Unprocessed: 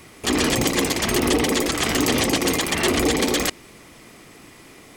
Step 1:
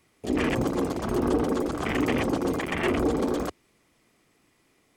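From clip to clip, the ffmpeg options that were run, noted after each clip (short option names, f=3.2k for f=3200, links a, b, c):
-af "afwtdn=0.0708,volume=-3.5dB"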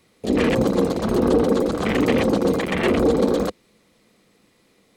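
-af "equalizer=f=200:t=o:w=0.33:g=10,equalizer=f=500:t=o:w=0.33:g=9,equalizer=f=4k:t=o:w=0.33:g=8,volume=3.5dB"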